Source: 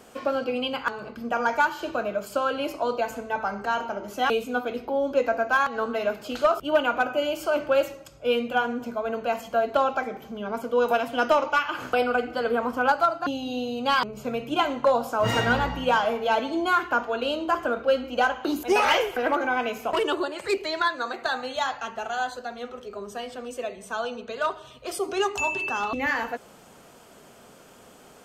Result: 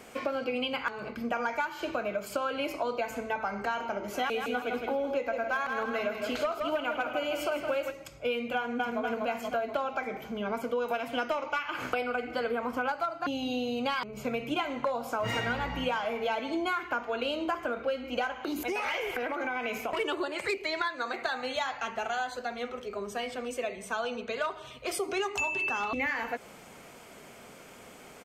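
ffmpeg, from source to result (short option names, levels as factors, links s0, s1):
-filter_complex "[0:a]asplit=3[s0][s1][s2];[s0]afade=t=out:st=4.13:d=0.02[s3];[s1]aecho=1:1:162|324|486|648|810:0.422|0.198|0.0932|0.0438|0.0206,afade=t=in:st=4.13:d=0.02,afade=t=out:st=7.9:d=0.02[s4];[s2]afade=t=in:st=7.9:d=0.02[s5];[s3][s4][s5]amix=inputs=3:normalize=0,asplit=2[s6][s7];[s7]afade=t=in:st=8.55:d=0.01,afade=t=out:st=9.01:d=0.01,aecho=0:1:240|480|720|960|1200|1440|1680|1920:0.794328|0.436881|0.240284|0.132156|0.072686|0.0399773|0.0219875|0.0120931[s8];[s6][s8]amix=inputs=2:normalize=0,asplit=3[s9][s10][s11];[s9]afade=t=out:st=18.42:d=0.02[s12];[s10]acompressor=threshold=0.0398:ratio=6:attack=3.2:release=140:knee=1:detection=peak,afade=t=in:st=18.42:d=0.02,afade=t=out:st=19.99:d=0.02[s13];[s11]afade=t=in:st=19.99:d=0.02[s14];[s12][s13][s14]amix=inputs=3:normalize=0,equalizer=f=2200:t=o:w=0.36:g=9.5,acompressor=threshold=0.0398:ratio=6"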